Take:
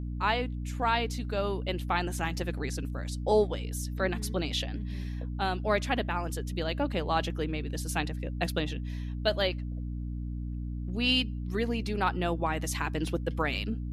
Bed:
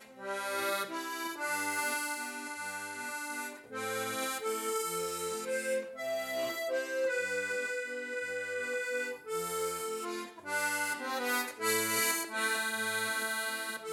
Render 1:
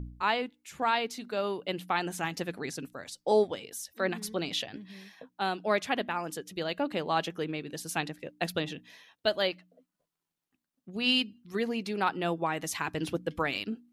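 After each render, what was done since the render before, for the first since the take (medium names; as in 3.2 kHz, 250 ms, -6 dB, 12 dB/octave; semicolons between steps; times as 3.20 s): de-hum 60 Hz, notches 5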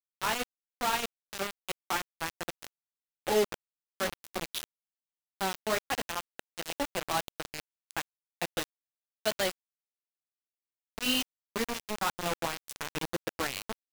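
flange 1.5 Hz, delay 8.4 ms, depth 5.5 ms, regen -22%; bit crusher 5-bit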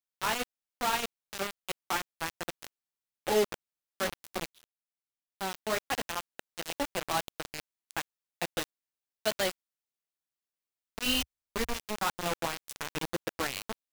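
4.50–5.92 s: fade in; 11.06–11.78 s: resonant low shelf 100 Hz +11 dB, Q 1.5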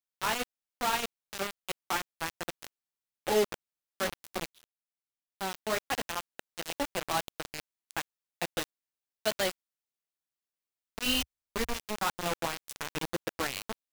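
no audible change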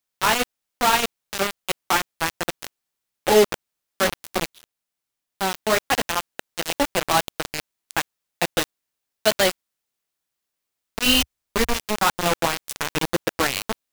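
trim +11 dB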